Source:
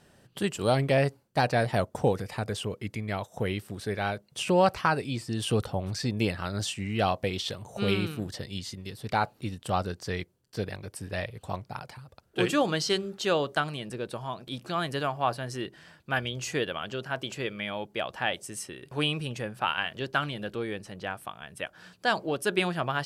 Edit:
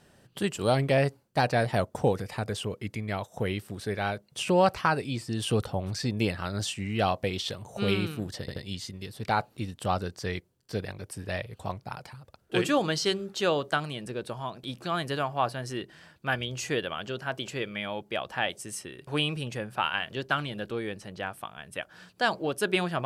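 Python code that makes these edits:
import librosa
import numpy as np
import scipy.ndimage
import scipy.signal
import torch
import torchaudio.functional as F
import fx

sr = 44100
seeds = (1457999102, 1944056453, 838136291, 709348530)

y = fx.edit(x, sr, fx.stutter(start_s=8.4, slice_s=0.08, count=3), tone=tone)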